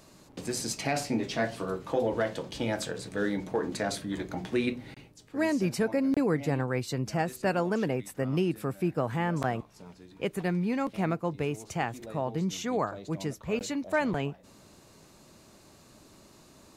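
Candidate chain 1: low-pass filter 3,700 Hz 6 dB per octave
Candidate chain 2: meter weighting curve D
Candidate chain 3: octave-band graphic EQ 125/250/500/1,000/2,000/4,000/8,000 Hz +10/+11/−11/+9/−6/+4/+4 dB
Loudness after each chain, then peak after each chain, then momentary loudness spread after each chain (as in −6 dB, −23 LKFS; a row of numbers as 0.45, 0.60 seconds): −31.0, −29.0, −24.0 LKFS; −15.0, −9.5, −9.5 dBFS; 8, 8, 10 LU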